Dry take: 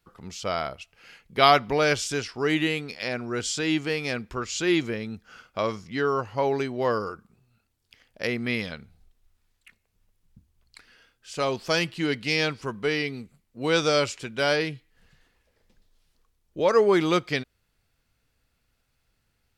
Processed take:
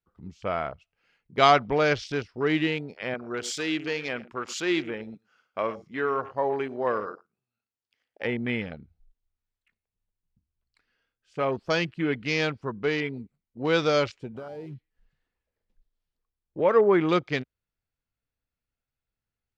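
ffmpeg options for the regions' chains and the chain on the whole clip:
-filter_complex "[0:a]asettb=1/sr,asplit=3[a][b][c];[a]atrim=end=3.144[d];[b]atrim=start=3.14:end=8.25,asetpts=PTS-STARTPTS,afade=t=in:d=0.004:c=qsin,afade=t=out:st=5.106:d=0.004:c=qsin,highpass=f=370:p=1,highshelf=f=7.3k:g=7.5,aecho=1:1:85|110:0.1|0.15,atrim=end_sample=225351[e];[c]atrim=start=8.246[f];[d][e]acrossfade=d=0.004:c1=hsin:c2=qsin[g];[g][f]acrossfade=d=0.004:c1=qsin:c2=hsin,asettb=1/sr,asplit=3[h][i][j];[h]atrim=end=14.344[k];[i]atrim=start=14.34:end=14.74,asetpts=PTS-STARTPTS,afade=t=in:d=0.004:c=qsin,afade=t=out:st=0.396:d=0.004:c=qsin,acompressor=threshold=-32dB:ratio=16:attack=3.2:release=140:knee=1:detection=peak,acrusher=bits=6:mix=0:aa=0.5[l];[j]atrim=start=14.736[m];[k][l]acrossfade=d=0.004:c1=hsin:c2=qsin[n];[n][m]acrossfade=d=0.004:c1=qsin:c2=hsin,afwtdn=0.0158,aemphasis=mode=reproduction:type=50kf"

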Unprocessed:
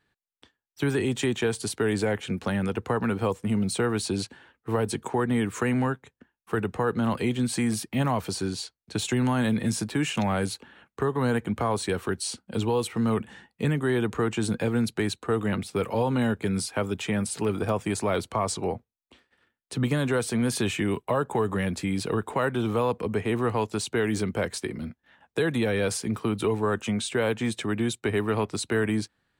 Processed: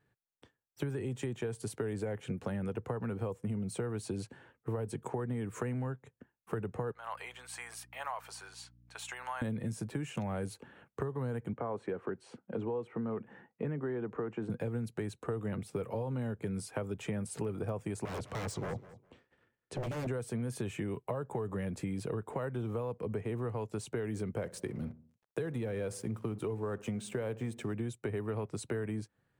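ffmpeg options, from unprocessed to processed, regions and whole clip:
-filter_complex "[0:a]asettb=1/sr,asplit=3[a][b][c];[a]atrim=end=6.924[d];[b]atrim=start=6.92:end=9.42,asetpts=PTS-STARTPTS,afade=t=in:d=0.004:c=qsin,afade=t=out:st=2.496:d=0.004:c=qsin,highpass=f=840:w=0.5412,highpass=f=840:w=1.3066,equalizer=f=11k:w=0.32:g=-6.5,aeval=exprs='val(0)+0.000891*(sin(2*PI*60*n/s)+sin(2*PI*2*60*n/s)/2+sin(2*PI*3*60*n/s)/3+sin(2*PI*4*60*n/s)/4+sin(2*PI*5*60*n/s)/5)':c=same[e];[c]atrim=start=9.416[f];[d][e]acrossfade=d=0.004:c1=hsin:c2=qsin[g];[g][f]acrossfade=d=0.004:c1=qsin:c2=hsin,asettb=1/sr,asplit=3[h][i][j];[h]atrim=end=11.534[k];[i]atrim=start=11.53:end=14.5,asetpts=PTS-STARTPTS,afade=t=in:d=0.004:c=qsin,afade=t=out:st=2.966:d=0.004:c=qsin,lowpass=7.5k,acrossover=split=170 2400:gain=0.178 1 0.112[l][m][n];[l][m][n]amix=inputs=3:normalize=0[o];[j]atrim=start=14.496[p];[k][o]acrossfade=d=0.004:c1=hsin:c2=qsin[q];[q][p]acrossfade=d=0.004:c1=qsin:c2=hsin,asettb=1/sr,asplit=3[r][s][t];[r]atrim=end=18.054[u];[s]atrim=start=18.05:end=20.07,asetpts=PTS-STARTPTS,afade=t=in:d=0.004:c=qsin,afade=t=out:st=2.016:d=0.004:c=qsin,lowpass=7.1k,aeval=exprs='0.0422*(abs(mod(val(0)/0.0422+3,4)-2)-1)':c=same,aecho=1:1:204|408:0.112|0.0213,atrim=end_sample=89082[v];[t]atrim=start=20.066[w];[u][v]acrossfade=d=0.004:c1=hsin:c2=qsin[x];[x][w]acrossfade=d=0.004:c1=qsin:c2=hsin,asettb=1/sr,asplit=3[y][z][aa];[y]atrim=end=24.404[ab];[z]atrim=start=24.4:end=27.74,asetpts=PTS-STARTPTS,afade=t=in:d=0.004:c=qsin,afade=t=out:st=3.336:d=0.004:c=qsin,aeval=exprs='sgn(val(0))*max(abs(val(0))-0.00355,0)':c=same,asplit=2[ac][ad];[ad]adelay=63,lowpass=f=970:p=1,volume=-18.5dB,asplit=2[ae][af];[af]adelay=63,lowpass=f=970:p=1,volume=0.52,asplit=2[ag][ah];[ah]adelay=63,lowpass=f=970:p=1,volume=0.52,asplit=2[ai][aj];[aj]adelay=63,lowpass=f=970:p=1,volume=0.52[ak];[ac][ae][ag][ai][ak]amix=inputs=5:normalize=0,atrim=end_sample=147294[al];[aa]atrim=start=27.736[am];[ab][al]acrossfade=d=0.004:c1=hsin:c2=qsin[an];[an][am]acrossfade=d=0.004:c1=qsin:c2=hsin,equalizer=f=125:t=o:w=1:g=10,equalizer=f=500:t=o:w=1:g=6,equalizer=f=4k:t=o:w=1:g=-7,acompressor=threshold=-28dB:ratio=6,volume=-5.5dB"

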